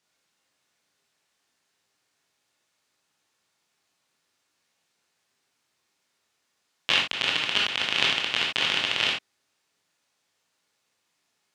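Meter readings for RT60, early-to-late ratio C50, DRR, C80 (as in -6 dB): no single decay rate, 3.5 dB, -2.5 dB, 11.0 dB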